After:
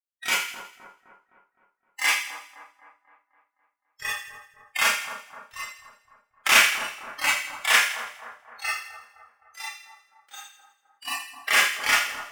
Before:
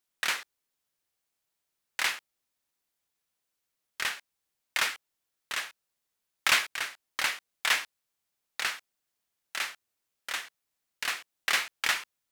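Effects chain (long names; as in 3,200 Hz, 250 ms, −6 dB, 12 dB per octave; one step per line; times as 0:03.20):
noise reduction from a noise print of the clip's start 25 dB
dynamic equaliser 4,100 Hz, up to −8 dB, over −49 dBFS, Q 3.2
on a send: echo with a time of its own for lows and highs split 1,400 Hz, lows 258 ms, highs 82 ms, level −10 dB
on the sum: four-comb reverb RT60 0.31 s, combs from 27 ms, DRR −6.5 dB
level +1.5 dB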